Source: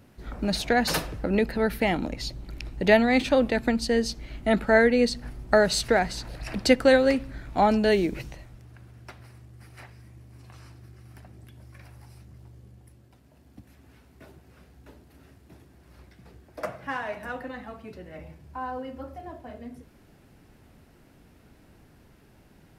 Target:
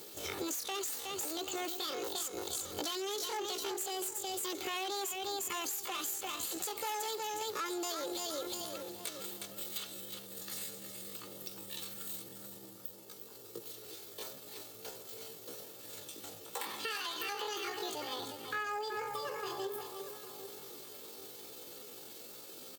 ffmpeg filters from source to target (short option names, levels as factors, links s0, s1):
-filter_complex "[0:a]acontrast=32,aecho=1:1:3.7:0.39,asplit=2[s0][s1];[s1]aecho=0:1:355|710:0.335|0.0536[s2];[s0][s2]amix=inputs=2:normalize=0,aexciter=amount=4.7:drive=3.6:freq=2100,aeval=exprs='(tanh(5.62*val(0)+0.55)-tanh(0.55))/5.62':c=same,alimiter=limit=0.0841:level=0:latency=1:release=98,asplit=2[s3][s4];[s4]adelay=792,lowpass=f=940:p=1,volume=0.211,asplit=2[s5][s6];[s6]adelay=792,lowpass=f=940:p=1,volume=0.29,asplit=2[s7][s8];[s8]adelay=792,lowpass=f=940:p=1,volume=0.29[s9];[s5][s7][s9]amix=inputs=3:normalize=0[s10];[s3][s10]amix=inputs=2:normalize=0,aexciter=amount=1.9:drive=3:freq=8100,highpass=170,equalizer=f=590:w=7.6:g=-8,acompressor=threshold=0.02:ratio=12,asetrate=72056,aresample=44100,atempo=0.612027"